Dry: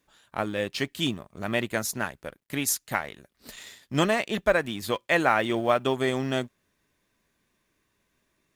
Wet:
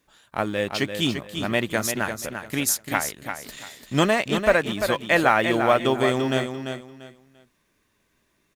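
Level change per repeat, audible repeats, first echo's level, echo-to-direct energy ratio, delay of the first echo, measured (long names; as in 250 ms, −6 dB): −12.0 dB, 3, −7.5 dB, −7.0 dB, 343 ms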